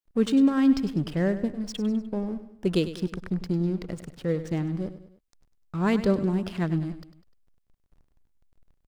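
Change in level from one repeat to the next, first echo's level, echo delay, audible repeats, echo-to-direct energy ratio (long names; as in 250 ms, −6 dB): −6.5 dB, −13.0 dB, 100 ms, 3, −12.0 dB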